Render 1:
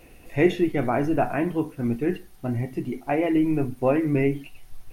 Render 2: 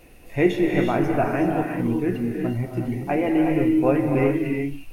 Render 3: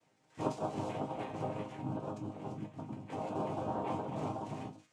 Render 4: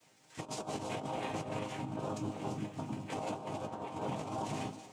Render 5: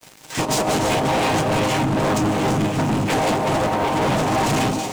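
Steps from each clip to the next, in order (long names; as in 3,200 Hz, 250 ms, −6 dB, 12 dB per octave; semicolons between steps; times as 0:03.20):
reverb whose tail is shaped and stops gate 410 ms rising, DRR 1.5 dB
flanger swept by the level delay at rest 4.1 ms, full sweep at −19.5 dBFS; cochlear-implant simulation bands 4; resonators tuned to a chord G#2 major, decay 0.22 s; level −5 dB
high-shelf EQ 2,300 Hz +11 dB; compressor whose output falls as the input rises −39 dBFS, ratio −0.5; tape delay 207 ms, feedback 82%, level −17 dB, low-pass 4,400 Hz; level +1 dB
leveller curve on the samples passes 5; level +9 dB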